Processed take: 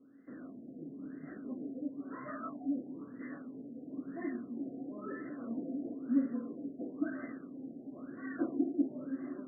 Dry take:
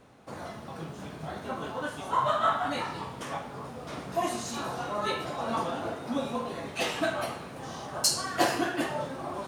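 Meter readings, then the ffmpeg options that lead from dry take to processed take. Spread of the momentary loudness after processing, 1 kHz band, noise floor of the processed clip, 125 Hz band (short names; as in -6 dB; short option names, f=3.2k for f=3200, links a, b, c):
13 LU, -22.0 dB, -51 dBFS, -14.5 dB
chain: -filter_complex "[0:a]asplit=2[a][b];[b]highpass=f=720:p=1,volume=10dB,asoftclip=type=tanh:threshold=-10.5dB[c];[a][c]amix=inputs=2:normalize=0,lowpass=f=1.7k:p=1,volume=-6dB,asplit=3[d][e][f];[d]bandpass=f=270:t=q:w=8,volume=0dB[g];[e]bandpass=f=2.29k:t=q:w=8,volume=-6dB[h];[f]bandpass=f=3.01k:t=q:w=8,volume=-9dB[i];[g][h][i]amix=inputs=3:normalize=0,afftfilt=real='re*lt(b*sr/1024,750*pow(2100/750,0.5+0.5*sin(2*PI*1*pts/sr)))':imag='im*lt(b*sr/1024,750*pow(2100/750,0.5+0.5*sin(2*PI*1*pts/sr)))':win_size=1024:overlap=0.75,volume=8dB"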